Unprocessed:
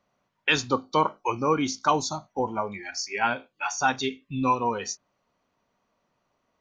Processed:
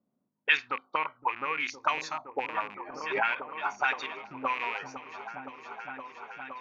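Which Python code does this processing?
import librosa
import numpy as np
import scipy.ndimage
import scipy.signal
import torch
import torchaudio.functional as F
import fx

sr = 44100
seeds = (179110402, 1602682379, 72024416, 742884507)

y = fx.rattle_buzz(x, sr, strikes_db=-36.0, level_db=-23.0)
y = fx.lowpass(y, sr, hz=2900.0, slope=12, at=(0.57, 1.6))
y = fx.level_steps(y, sr, step_db=12, at=(4.06, 4.5))
y = fx.auto_wah(y, sr, base_hz=240.0, top_hz=2100.0, q=2.6, full_db=-22.0, direction='up')
y = fx.echo_opening(y, sr, ms=514, hz=200, octaves=1, feedback_pct=70, wet_db=-3)
y = fx.pre_swell(y, sr, db_per_s=61.0, at=(2.87, 3.49))
y = F.gain(torch.from_numpy(y), 4.0).numpy()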